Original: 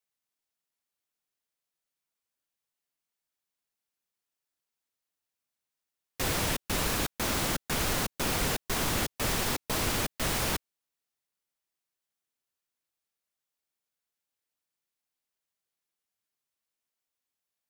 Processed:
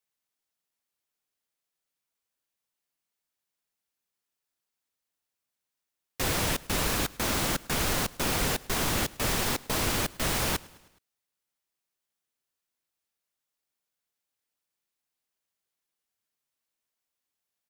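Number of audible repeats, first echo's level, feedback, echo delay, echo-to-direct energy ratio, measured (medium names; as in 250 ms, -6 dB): 3, -23.0 dB, 57%, 105 ms, -21.5 dB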